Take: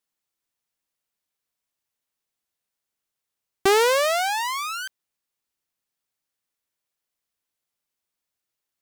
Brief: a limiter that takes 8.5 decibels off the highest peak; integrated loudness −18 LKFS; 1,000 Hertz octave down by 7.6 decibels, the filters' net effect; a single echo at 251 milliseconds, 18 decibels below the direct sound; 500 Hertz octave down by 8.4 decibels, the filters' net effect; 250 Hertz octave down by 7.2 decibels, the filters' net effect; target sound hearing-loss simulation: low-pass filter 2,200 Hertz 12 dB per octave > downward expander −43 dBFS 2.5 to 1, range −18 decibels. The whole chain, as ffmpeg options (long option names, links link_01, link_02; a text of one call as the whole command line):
ffmpeg -i in.wav -af "equalizer=frequency=250:width_type=o:gain=-5.5,equalizer=frequency=500:width_type=o:gain=-7,equalizer=frequency=1000:width_type=o:gain=-7,alimiter=limit=-18dB:level=0:latency=1,lowpass=2200,aecho=1:1:251:0.126,agate=range=-18dB:threshold=-43dB:ratio=2.5,volume=15.5dB" out.wav